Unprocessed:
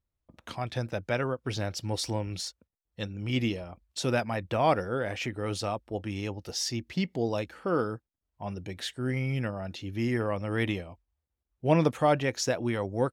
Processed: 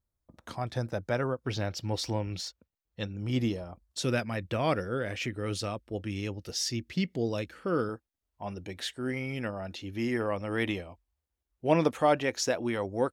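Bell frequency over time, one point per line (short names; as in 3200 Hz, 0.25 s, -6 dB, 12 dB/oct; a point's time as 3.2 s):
bell -8.5 dB
2700 Hz
from 1.46 s 9600 Hz
from 3.16 s 2500 Hz
from 3.99 s 820 Hz
from 7.89 s 130 Hz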